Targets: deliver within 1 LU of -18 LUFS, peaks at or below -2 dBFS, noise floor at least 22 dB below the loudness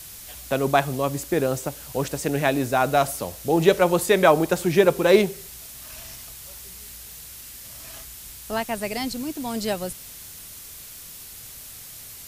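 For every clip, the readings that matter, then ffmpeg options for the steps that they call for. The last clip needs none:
noise floor -41 dBFS; noise floor target -45 dBFS; loudness -22.5 LUFS; peak -3.5 dBFS; loudness target -18.0 LUFS
-> -af "afftdn=nr=6:nf=-41"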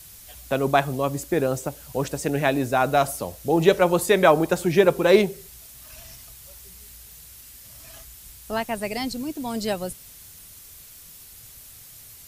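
noise floor -46 dBFS; loudness -22.5 LUFS; peak -3.5 dBFS; loudness target -18.0 LUFS
-> -af "volume=4.5dB,alimiter=limit=-2dB:level=0:latency=1"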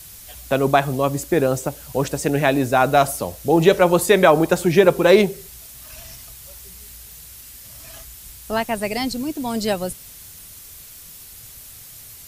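loudness -18.5 LUFS; peak -2.0 dBFS; noise floor -41 dBFS

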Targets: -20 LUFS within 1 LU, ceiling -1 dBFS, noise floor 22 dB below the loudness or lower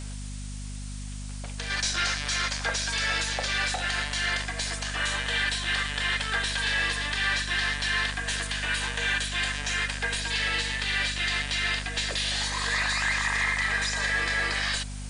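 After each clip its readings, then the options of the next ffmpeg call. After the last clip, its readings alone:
hum 50 Hz; harmonics up to 250 Hz; hum level -34 dBFS; noise floor -36 dBFS; noise floor target -49 dBFS; loudness -26.5 LUFS; peak -15.0 dBFS; loudness target -20.0 LUFS
-> -af "bandreject=f=50:t=h:w=4,bandreject=f=100:t=h:w=4,bandreject=f=150:t=h:w=4,bandreject=f=200:t=h:w=4,bandreject=f=250:t=h:w=4"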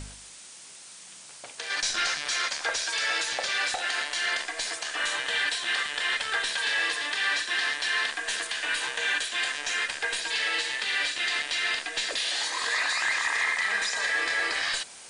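hum none; noise floor -47 dBFS; noise floor target -49 dBFS
-> -af "afftdn=nr=6:nf=-47"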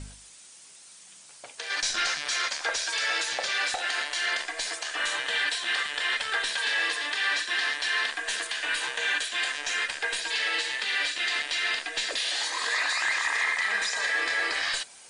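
noise floor -50 dBFS; loudness -26.5 LUFS; peak -15.5 dBFS; loudness target -20.0 LUFS
-> -af "volume=6.5dB"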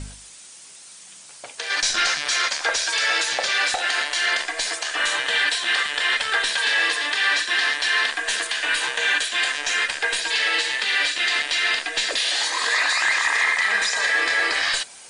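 loudness -20.0 LUFS; peak -9.0 dBFS; noise floor -44 dBFS

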